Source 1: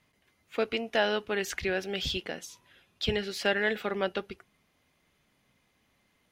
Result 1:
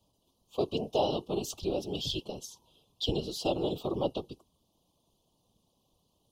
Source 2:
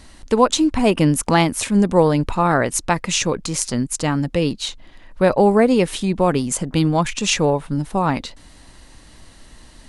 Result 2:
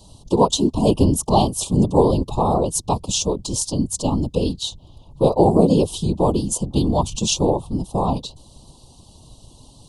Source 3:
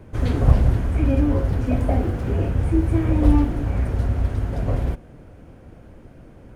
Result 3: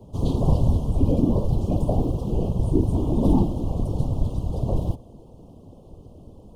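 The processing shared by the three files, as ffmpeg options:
-af "afreqshift=-38,afftfilt=real='hypot(re,im)*cos(2*PI*random(0))':imag='hypot(re,im)*sin(2*PI*random(1))':win_size=512:overlap=0.75,asuperstop=centerf=1800:order=8:qfactor=0.89,volume=5.5dB"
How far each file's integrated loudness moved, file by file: -2.5, -1.0, -2.5 LU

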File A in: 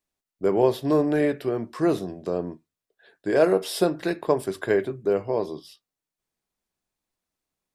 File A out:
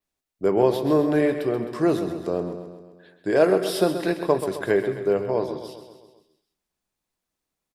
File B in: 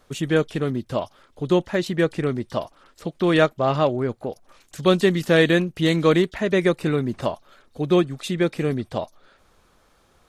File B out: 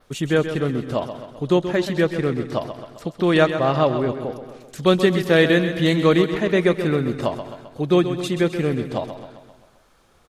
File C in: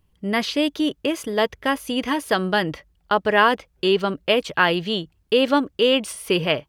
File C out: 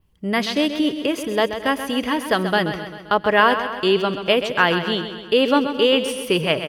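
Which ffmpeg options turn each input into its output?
-filter_complex "[0:a]asplit=2[a][b];[b]aecho=0:1:217:0.0891[c];[a][c]amix=inputs=2:normalize=0,adynamicequalizer=threshold=0.00316:dfrequency=7500:dqfactor=1.8:tfrequency=7500:tqfactor=1.8:attack=5:release=100:ratio=0.375:range=3:mode=cutabove:tftype=bell,asplit=2[d][e];[e]aecho=0:1:131|262|393|524|655|786:0.316|0.177|0.0992|0.0555|0.0311|0.0174[f];[d][f]amix=inputs=2:normalize=0,volume=1dB"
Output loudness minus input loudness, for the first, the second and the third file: +1.5, +1.5, +1.5 LU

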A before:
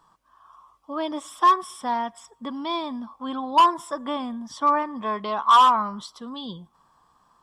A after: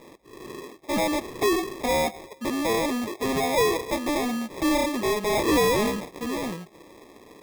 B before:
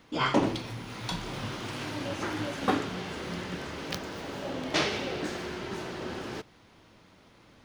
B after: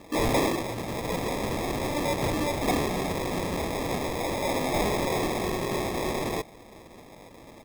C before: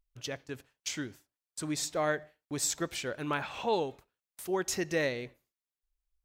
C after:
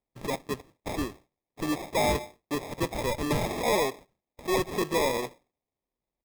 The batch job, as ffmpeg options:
-filter_complex "[0:a]highpass=44,aresample=8000,aresample=44100,asplit=2[a][b];[b]highpass=f=720:p=1,volume=29dB,asoftclip=type=tanh:threshold=-7.5dB[c];[a][c]amix=inputs=2:normalize=0,lowpass=f=1.9k:p=1,volume=-6dB,acrusher=samples=30:mix=1:aa=0.000001,volume=-7.5dB"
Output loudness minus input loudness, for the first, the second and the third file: -2.5, +4.5, +4.0 LU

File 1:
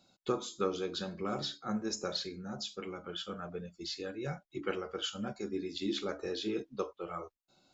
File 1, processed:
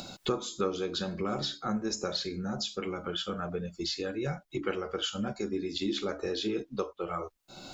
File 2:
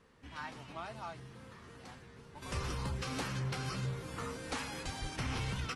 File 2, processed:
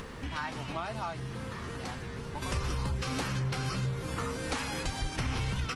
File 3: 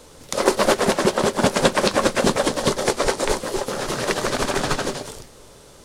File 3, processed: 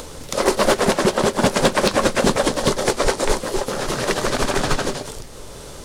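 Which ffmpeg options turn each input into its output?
-af "lowshelf=f=68:g=6.5,acompressor=mode=upward:threshold=-28dB:ratio=2.5,asoftclip=type=hard:threshold=-9.5dB,volume=1.5dB"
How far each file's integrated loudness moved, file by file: +4.0, +5.0, +1.5 LU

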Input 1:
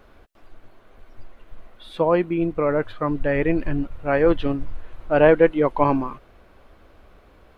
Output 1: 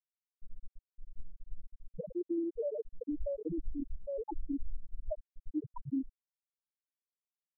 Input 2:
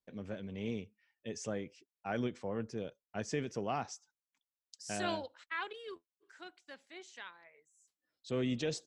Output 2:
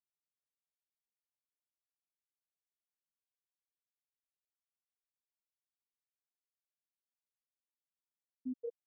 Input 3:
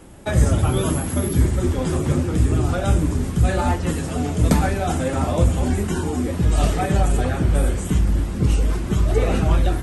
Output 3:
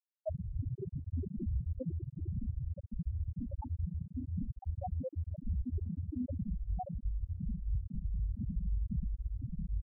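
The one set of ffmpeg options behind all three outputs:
-af "lowpass=1.2k,aeval=exprs='0.119*(abs(mod(val(0)/0.119+3,4)-2)-1)':c=same,acompressor=threshold=-39dB:ratio=3,afftfilt=real='re*gte(hypot(re,im),0.126)':imag='im*gte(hypot(re,im),0.126)':win_size=1024:overlap=0.75,volume=5.5dB"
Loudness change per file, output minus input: -19.0, -4.5, -19.0 LU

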